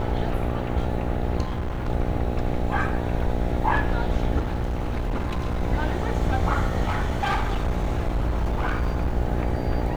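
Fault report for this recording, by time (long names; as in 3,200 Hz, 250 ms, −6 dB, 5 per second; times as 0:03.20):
mains buzz 60 Hz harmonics 14 −28 dBFS
0:01.42–0:01.89: clipping −24 dBFS
0:04.39–0:05.63: clipping −22 dBFS
0:06.83–0:09.17: clipping −19.5 dBFS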